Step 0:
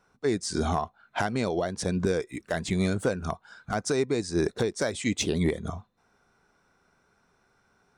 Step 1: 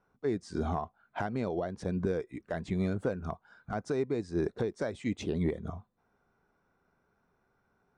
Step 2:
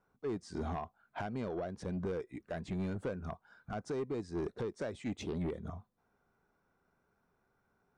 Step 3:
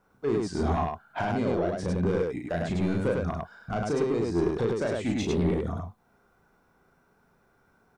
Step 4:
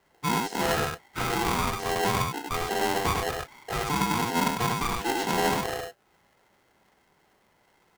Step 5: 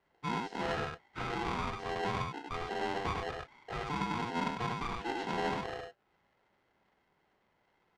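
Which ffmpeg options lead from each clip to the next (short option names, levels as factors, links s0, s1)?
-af "lowpass=f=1200:p=1,volume=0.596"
-af "asoftclip=type=tanh:threshold=0.0422,volume=0.708"
-af "aecho=1:1:34.99|102:0.631|0.794,volume=2.66"
-af "aeval=exprs='val(0)*sgn(sin(2*PI*590*n/s))':c=same"
-af "lowpass=3800,volume=0.376"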